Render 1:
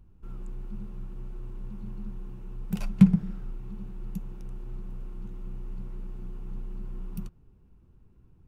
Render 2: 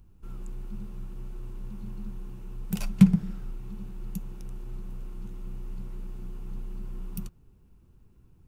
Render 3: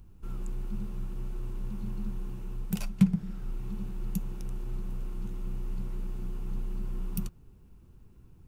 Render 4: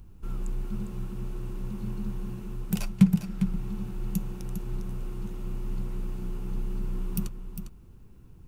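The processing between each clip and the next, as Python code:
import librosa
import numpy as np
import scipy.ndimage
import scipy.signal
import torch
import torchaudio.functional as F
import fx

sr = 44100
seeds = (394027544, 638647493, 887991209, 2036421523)

y1 = fx.high_shelf(x, sr, hz=3600.0, db=10.0)
y2 = fx.rider(y1, sr, range_db=5, speed_s=0.5)
y2 = y2 * 10.0 ** (-2.0 / 20.0)
y3 = y2 + 10.0 ** (-9.0 / 20.0) * np.pad(y2, (int(403 * sr / 1000.0), 0))[:len(y2)]
y3 = y3 * 10.0 ** (3.5 / 20.0)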